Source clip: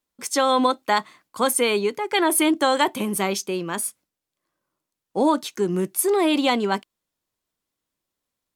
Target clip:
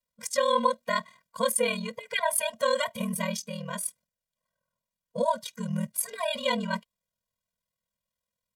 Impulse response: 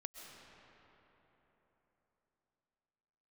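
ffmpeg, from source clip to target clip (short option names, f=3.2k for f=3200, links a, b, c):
-af "aeval=exprs='val(0)*sin(2*PI*20*n/s)':c=same,afftfilt=real='re*eq(mod(floor(b*sr/1024/230),2),0)':imag='im*eq(mod(floor(b*sr/1024/230),2),0)':win_size=1024:overlap=0.75"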